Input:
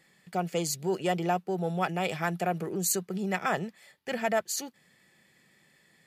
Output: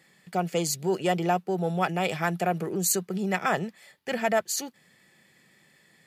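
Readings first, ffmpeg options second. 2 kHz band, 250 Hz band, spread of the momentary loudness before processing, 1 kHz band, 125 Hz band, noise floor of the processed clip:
+3.0 dB, +3.0 dB, 7 LU, +3.0 dB, +3.0 dB, -62 dBFS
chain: -af "highpass=62,volume=3dB"

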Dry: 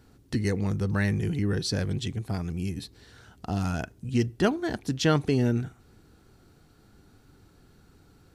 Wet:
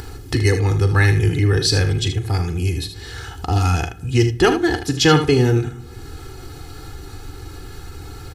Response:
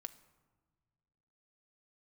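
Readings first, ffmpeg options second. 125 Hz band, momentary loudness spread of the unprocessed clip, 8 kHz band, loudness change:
+11.5 dB, 9 LU, +12.5 dB, +10.0 dB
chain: -filter_complex "[0:a]equalizer=f=430:t=o:w=1.3:g=-5,aecho=1:1:2.4:0.85,acompressor=mode=upward:threshold=-34dB:ratio=2.5,aecho=1:1:40|77:0.237|0.316,asplit=2[a][b];[1:a]atrim=start_sample=2205,asetrate=66150,aresample=44100[c];[b][c]afir=irnorm=-1:irlink=0,volume=13dB[d];[a][d]amix=inputs=2:normalize=0,volume=1.5dB"

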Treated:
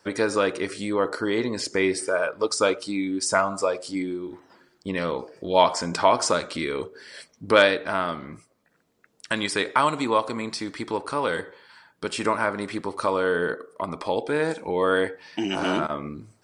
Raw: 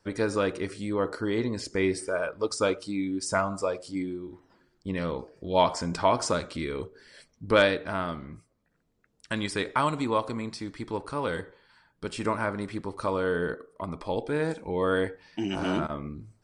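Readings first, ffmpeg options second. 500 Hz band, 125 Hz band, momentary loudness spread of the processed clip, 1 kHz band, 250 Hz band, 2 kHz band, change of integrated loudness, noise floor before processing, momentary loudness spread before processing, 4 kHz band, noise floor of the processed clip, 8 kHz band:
+4.0 dB, -2.0 dB, 12 LU, +5.5 dB, +2.0 dB, +6.0 dB, +4.5 dB, -70 dBFS, 12 LU, +6.5 dB, -66 dBFS, +7.0 dB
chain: -filter_complex "[0:a]highpass=f=370:p=1,asplit=2[a][b];[b]acompressor=threshold=-38dB:ratio=6,volume=-1.5dB[c];[a][c]amix=inputs=2:normalize=0,volume=4.5dB"

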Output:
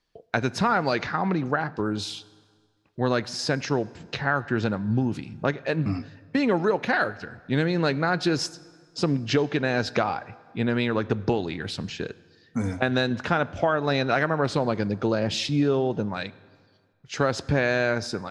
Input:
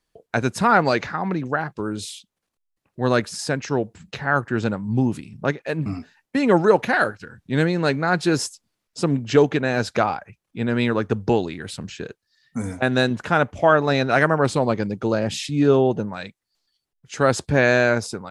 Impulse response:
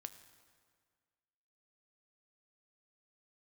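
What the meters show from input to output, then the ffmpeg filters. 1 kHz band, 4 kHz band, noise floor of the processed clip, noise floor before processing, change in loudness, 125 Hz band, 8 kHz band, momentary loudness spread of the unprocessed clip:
-4.5 dB, -0.5 dB, -62 dBFS, -79 dBFS, -4.5 dB, -3.0 dB, -5.5 dB, 15 LU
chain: -filter_complex "[0:a]highshelf=f=6.7k:t=q:w=1.5:g=-9,acompressor=threshold=-20dB:ratio=5,asplit=2[a][b];[1:a]atrim=start_sample=2205[c];[b][c]afir=irnorm=-1:irlink=0,volume=1dB[d];[a][d]amix=inputs=2:normalize=0,volume=-3.5dB"

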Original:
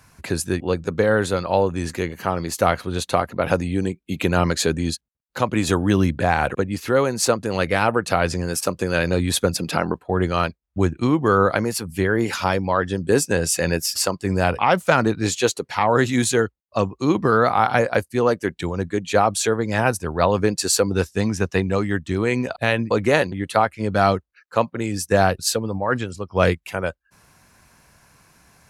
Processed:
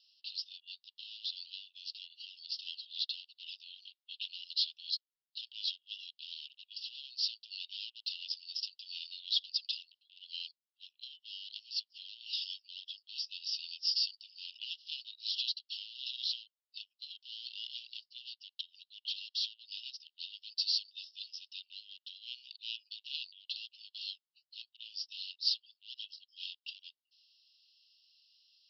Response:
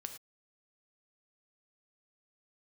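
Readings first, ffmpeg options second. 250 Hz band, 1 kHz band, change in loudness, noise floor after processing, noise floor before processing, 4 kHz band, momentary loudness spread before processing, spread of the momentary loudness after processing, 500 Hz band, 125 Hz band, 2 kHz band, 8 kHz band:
under -40 dB, under -40 dB, -18.0 dB, under -85 dBFS, -67 dBFS, -4.0 dB, 7 LU, 15 LU, under -40 dB, under -40 dB, -29.0 dB, -31.5 dB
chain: -af "asoftclip=type=tanh:threshold=-12dB,aeval=exprs='0.251*(cos(1*acos(clip(val(0)/0.251,-1,1)))-cos(1*PI/2))+0.0251*(cos(3*acos(clip(val(0)/0.251,-1,1)))-cos(3*PI/2))+0.0224*(cos(5*acos(clip(val(0)/0.251,-1,1)))-cos(5*PI/2))':c=same,asuperpass=centerf=3900:order=20:qfactor=1.5,volume=-2.5dB"

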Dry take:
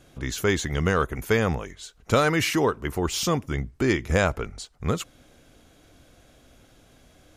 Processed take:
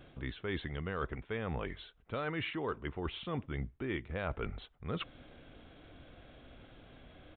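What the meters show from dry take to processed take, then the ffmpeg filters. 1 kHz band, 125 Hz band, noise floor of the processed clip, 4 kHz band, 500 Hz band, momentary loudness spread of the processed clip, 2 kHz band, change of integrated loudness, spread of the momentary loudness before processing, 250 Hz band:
-14.0 dB, -13.0 dB, -64 dBFS, -14.0 dB, -15.0 dB, 19 LU, -14.0 dB, -14.5 dB, 11 LU, -13.5 dB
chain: -af "areverse,acompressor=threshold=-35dB:ratio=6,areverse,aresample=8000,aresample=44100"

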